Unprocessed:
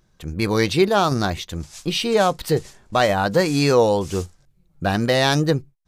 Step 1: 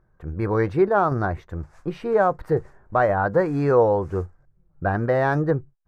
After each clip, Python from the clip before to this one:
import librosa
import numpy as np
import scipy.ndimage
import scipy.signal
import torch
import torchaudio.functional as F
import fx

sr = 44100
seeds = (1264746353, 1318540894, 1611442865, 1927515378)

y = fx.curve_eq(x, sr, hz=(110.0, 220.0, 380.0, 1600.0, 3200.0), db=(0, -7, -1, -1, -27))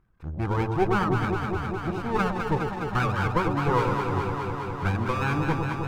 y = fx.lower_of_two(x, sr, delay_ms=0.77)
y = fx.dereverb_blind(y, sr, rt60_s=1.2)
y = fx.echo_alternate(y, sr, ms=103, hz=850.0, feedback_pct=90, wet_db=-4.0)
y = y * librosa.db_to_amplitude(-3.0)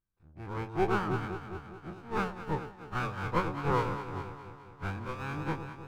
y = fx.spec_dilate(x, sr, span_ms=60)
y = fx.upward_expand(y, sr, threshold_db=-30.0, expansion=2.5)
y = y * librosa.db_to_amplitude(-6.5)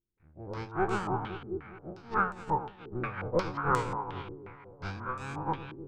y = fx.filter_held_lowpass(x, sr, hz=5.6, low_hz=370.0, high_hz=7900.0)
y = y * librosa.db_to_amplitude(-2.5)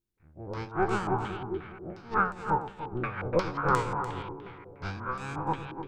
y = x + 10.0 ** (-11.5 / 20.0) * np.pad(x, (int(294 * sr / 1000.0), 0))[:len(x)]
y = y * librosa.db_to_amplitude(2.0)